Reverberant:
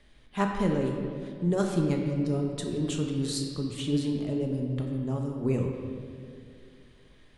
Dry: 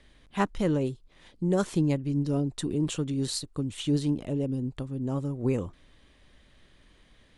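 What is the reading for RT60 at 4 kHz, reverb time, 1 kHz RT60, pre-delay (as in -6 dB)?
1.5 s, 2.4 s, 2.1 s, 5 ms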